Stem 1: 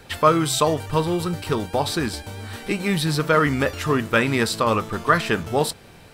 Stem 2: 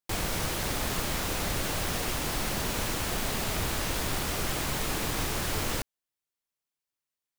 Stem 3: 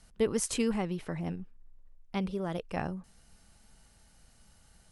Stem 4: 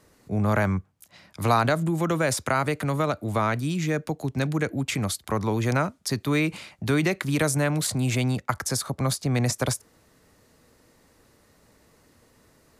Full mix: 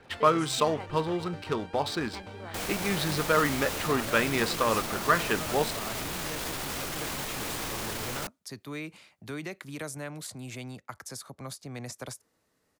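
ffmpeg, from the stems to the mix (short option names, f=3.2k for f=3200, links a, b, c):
-filter_complex "[0:a]adynamicsmooth=sensitivity=4:basefreq=2.9k,volume=-5.5dB[a];[1:a]adelay=2450,volume=-1dB[b];[2:a]acrusher=bits=8:mix=0:aa=0.000001,bandpass=f=1.4k:t=q:w=0.57:csg=0,volume=-3.5dB,asplit=2[c][d];[3:a]adelay=2400,volume=-13dB[e];[d]apad=whole_len=669988[f];[e][f]sidechaincompress=threshold=-49dB:ratio=3:attack=5.6:release=172[g];[b][c][g]amix=inputs=3:normalize=0,alimiter=limit=-23.5dB:level=0:latency=1:release=12,volume=0dB[h];[a][h]amix=inputs=2:normalize=0,lowshelf=f=140:g=-9"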